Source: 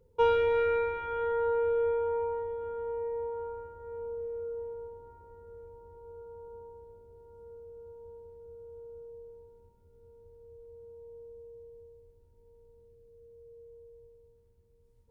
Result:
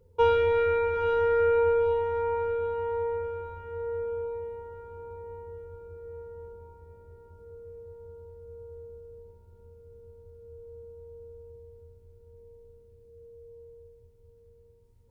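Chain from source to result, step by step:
parametric band 85 Hz +10 dB 0.29 octaves
feedback delay with all-pass diffusion 842 ms, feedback 45%, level −6.5 dB
level +2.5 dB

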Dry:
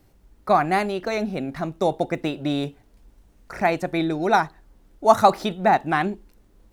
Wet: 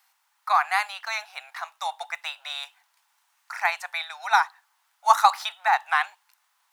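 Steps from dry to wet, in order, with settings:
Butterworth high-pass 850 Hz 48 dB per octave
level +2.5 dB

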